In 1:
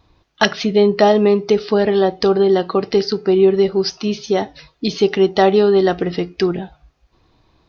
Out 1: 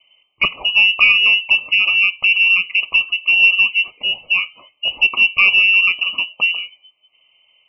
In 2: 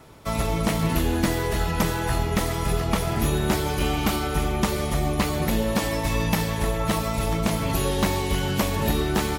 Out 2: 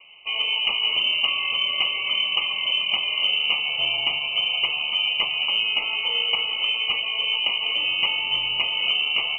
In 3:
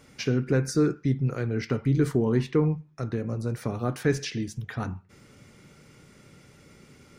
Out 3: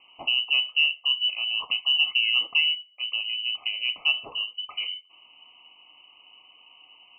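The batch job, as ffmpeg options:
-af "asuperstop=centerf=1400:order=20:qfactor=1.8,lowpass=f=2.6k:t=q:w=0.5098,lowpass=f=2.6k:t=q:w=0.6013,lowpass=f=2.6k:t=q:w=0.9,lowpass=f=2.6k:t=q:w=2.563,afreqshift=-3100,aeval=exprs='0.944*(cos(1*acos(clip(val(0)/0.944,-1,1)))-cos(1*PI/2))+0.0266*(cos(2*acos(clip(val(0)/0.944,-1,1)))-cos(2*PI/2))':c=same"

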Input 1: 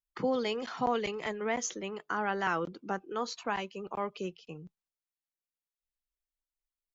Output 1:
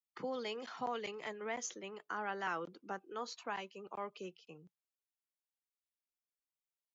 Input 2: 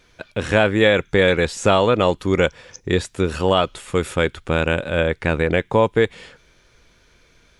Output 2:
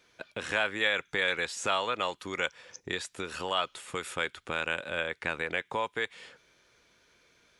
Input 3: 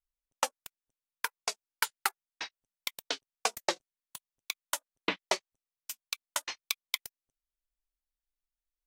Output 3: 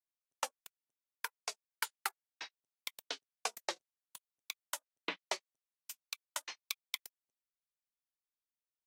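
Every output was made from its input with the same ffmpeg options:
-filter_complex "[0:a]highpass=f=280:p=1,acrossover=split=870|930[a][b][c];[a]acompressor=threshold=-30dB:ratio=6[d];[d][b][c]amix=inputs=3:normalize=0,volume=-7dB"

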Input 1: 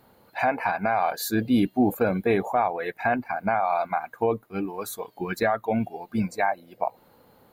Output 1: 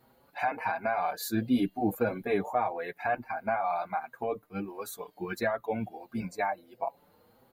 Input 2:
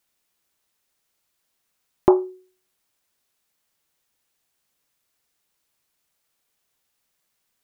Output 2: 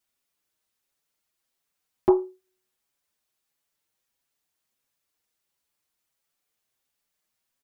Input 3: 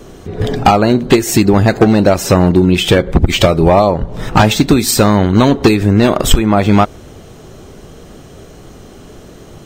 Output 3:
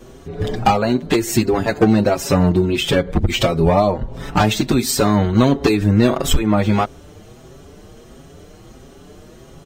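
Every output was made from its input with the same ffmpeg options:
-filter_complex "[0:a]asplit=2[a][b];[b]adelay=5.9,afreqshift=1.5[c];[a][c]amix=inputs=2:normalize=1,volume=-3dB"

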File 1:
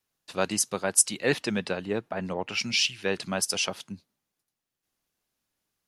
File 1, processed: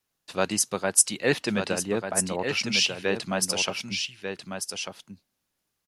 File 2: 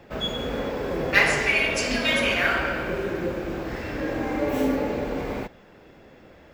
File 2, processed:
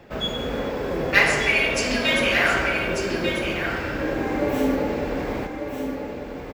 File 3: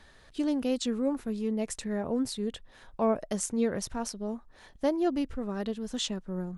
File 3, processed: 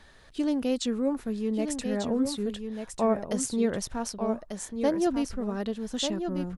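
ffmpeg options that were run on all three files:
-af "aecho=1:1:1193:0.447,volume=1.5dB"

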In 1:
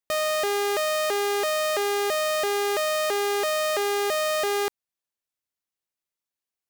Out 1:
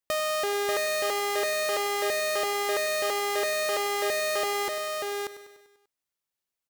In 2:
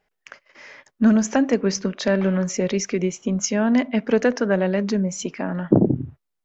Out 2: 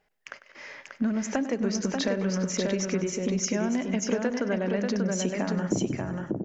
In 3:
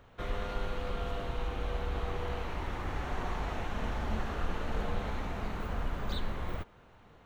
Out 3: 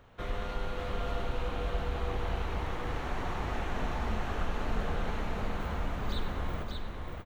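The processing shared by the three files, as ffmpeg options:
-filter_complex "[0:a]asplit=2[a][b];[b]aecho=0:1:98|196|294|392|490|588:0.178|0.103|0.0598|0.0347|0.0201|0.0117[c];[a][c]amix=inputs=2:normalize=0,acompressor=threshold=-25dB:ratio=6,asplit=2[d][e];[e]aecho=0:1:588:0.631[f];[d][f]amix=inputs=2:normalize=0"

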